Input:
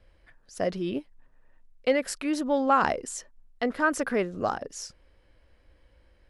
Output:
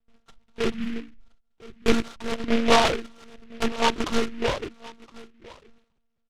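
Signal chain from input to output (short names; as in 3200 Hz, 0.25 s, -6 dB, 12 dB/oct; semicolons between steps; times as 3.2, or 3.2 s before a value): notches 50/100/150/200/250/300/350/400 Hz; gate with hold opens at -48 dBFS; steep low-pass 1900 Hz 36 dB/oct; comb 2.2 ms, depth 52%; formant shift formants -5 st; echo 1.014 s -21 dB; monotone LPC vocoder at 8 kHz 230 Hz; noise-modulated delay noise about 2000 Hz, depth 0.13 ms; gain +3.5 dB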